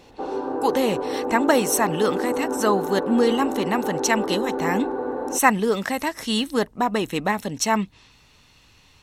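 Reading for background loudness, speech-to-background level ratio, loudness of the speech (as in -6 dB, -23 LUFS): -27.5 LUFS, 4.5 dB, -23.0 LUFS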